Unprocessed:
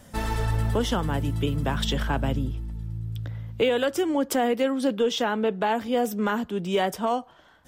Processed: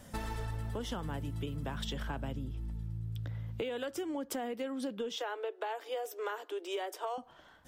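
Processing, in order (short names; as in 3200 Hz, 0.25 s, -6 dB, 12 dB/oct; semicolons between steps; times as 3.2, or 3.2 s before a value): 5.17–7.18 steep high-pass 310 Hz 96 dB/oct; compressor 6:1, threshold -32 dBFS, peak gain reduction 13.5 dB; gain -3 dB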